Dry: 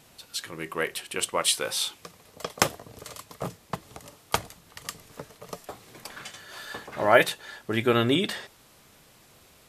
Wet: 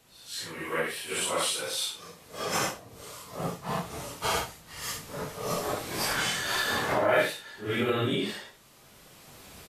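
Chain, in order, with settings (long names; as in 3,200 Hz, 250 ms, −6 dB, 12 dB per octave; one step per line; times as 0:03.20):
random phases in long frames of 200 ms
camcorder AGC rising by 9.5 dB per second
single-tap delay 75 ms −16 dB
level −5.5 dB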